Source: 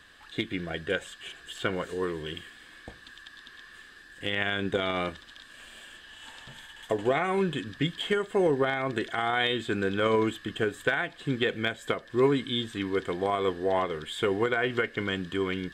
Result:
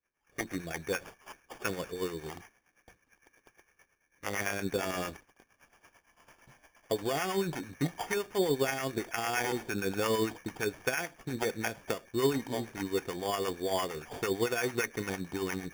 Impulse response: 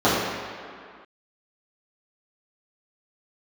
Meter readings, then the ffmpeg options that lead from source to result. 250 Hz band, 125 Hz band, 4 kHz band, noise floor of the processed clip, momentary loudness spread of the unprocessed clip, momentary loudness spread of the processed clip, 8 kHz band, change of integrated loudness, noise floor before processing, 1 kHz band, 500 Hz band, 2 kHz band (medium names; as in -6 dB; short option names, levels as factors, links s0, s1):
-4.5 dB, -4.5 dB, -7.0 dB, -75 dBFS, 21 LU, 8 LU, +9.0 dB, -4.5 dB, -52 dBFS, -5.0 dB, -5.0 dB, -5.5 dB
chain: -filter_complex "[0:a]acrossover=split=840[s0][s1];[s0]aeval=exprs='val(0)*(1-0.7/2+0.7/2*cos(2*PI*8.8*n/s))':c=same[s2];[s1]aeval=exprs='val(0)*(1-0.7/2-0.7/2*cos(2*PI*8.8*n/s))':c=same[s3];[s2][s3]amix=inputs=2:normalize=0,agate=range=0.0224:threshold=0.00794:ratio=3:detection=peak,acrusher=samples=11:mix=1:aa=0.000001,volume=0.841"